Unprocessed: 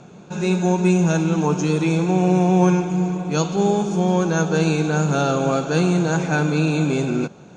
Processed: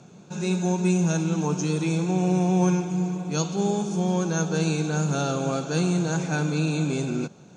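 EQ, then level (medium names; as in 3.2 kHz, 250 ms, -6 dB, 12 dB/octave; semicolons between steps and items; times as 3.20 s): high-pass 84 Hz; tone controls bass +4 dB, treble +9 dB; band-stop 6.8 kHz, Q 28; -7.5 dB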